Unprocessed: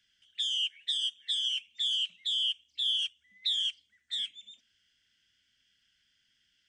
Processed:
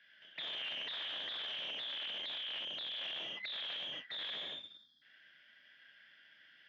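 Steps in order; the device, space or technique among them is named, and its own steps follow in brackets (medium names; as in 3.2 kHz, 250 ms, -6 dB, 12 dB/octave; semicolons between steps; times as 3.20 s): spectral selection erased 4.44–5.02 s, 320–3200 Hz; gated-style reverb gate 350 ms falling, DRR -2 dB; guitar amplifier (valve stage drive 48 dB, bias 0.8; tone controls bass -15 dB, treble -14 dB; cabinet simulation 97–4200 Hz, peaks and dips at 97 Hz -7 dB, 160 Hz +5 dB, 390 Hz -4 dB, 610 Hz +6 dB, 1.7 kHz +7 dB, 3 kHz -4 dB); trim +14.5 dB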